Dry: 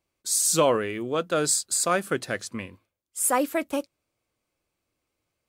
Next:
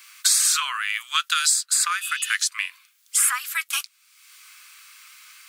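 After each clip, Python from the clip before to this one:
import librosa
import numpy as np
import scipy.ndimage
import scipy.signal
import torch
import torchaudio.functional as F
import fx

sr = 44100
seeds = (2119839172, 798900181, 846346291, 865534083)

y = scipy.signal.sosfilt(scipy.signal.butter(8, 1200.0, 'highpass', fs=sr, output='sos'), x)
y = fx.spec_repair(y, sr, seeds[0], start_s=2.04, length_s=0.26, low_hz=2500.0, high_hz=6500.0, source='both')
y = fx.band_squash(y, sr, depth_pct=100)
y = y * 10.0 ** (6.0 / 20.0)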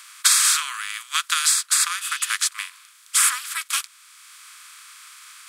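y = fx.bin_compress(x, sr, power=0.4)
y = fx.upward_expand(y, sr, threshold_db=-26.0, expansion=2.5)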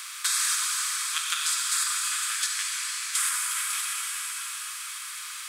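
y = fx.level_steps(x, sr, step_db=10)
y = fx.rev_plate(y, sr, seeds[1], rt60_s=3.7, hf_ratio=1.0, predelay_ms=0, drr_db=-2.5)
y = fx.band_squash(y, sr, depth_pct=70)
y = y * 10.0 ** (-6.5 / 20.0)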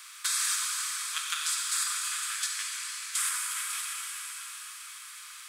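y = fx.band_widen(x, sr, depth_pct=40)
y = y * 10.0 ** (-4.0 / 20.0)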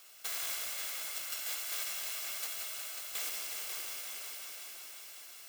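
y = fx.bit_reversed(x, sr, seeds[2], block=128)
y = fx.highpass(y, sr, hz=600.0, slope=6)
y = fx.echo_heads(y, sr, ms=181, heads='all three', feedback_pct=62, wet_db=-11)
y = y * 10.0 ** (-8.5 / 20.0)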